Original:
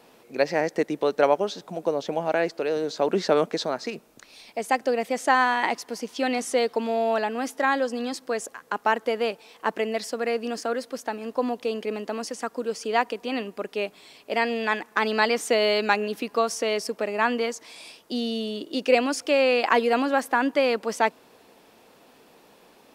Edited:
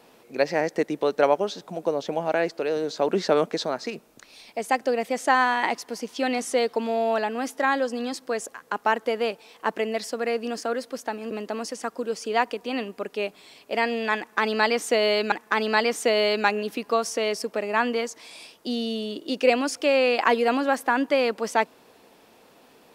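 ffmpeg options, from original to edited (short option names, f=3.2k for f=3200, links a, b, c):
-filter_complex "[0:a]asplit=3[a][b][c];[a]atrim=end=11.312[d];[b]atrim=start=11.898:end=15.912[e];[c]atrim=start=14.768[f];[d][e]acrossfade=d=0.004:c1=hsin:c2=hsin[g];[g][f]acrossfade=d=0.004:c1=hsin:c2=hsin"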